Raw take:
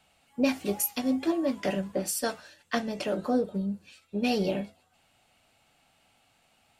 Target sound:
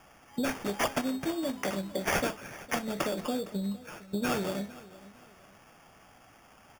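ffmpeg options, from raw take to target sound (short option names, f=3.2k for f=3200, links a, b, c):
-filter_complex "[0:a]acrossover=split=3800[a][b];[a]acompressor=threshold=-40dB:ratio=6[c];[b]alimiter=level_in=2.5dB:limit=-24dB:level=0:latency=1:release=80,volume=-2.5dB[d];[c][d]amix=inputs=2:normalize=0,acrusher=samples=11:mix=1:aa=0.000001,aecho=1:1:460|920|1380:0.112|0.037|0.0122,volume=9dB"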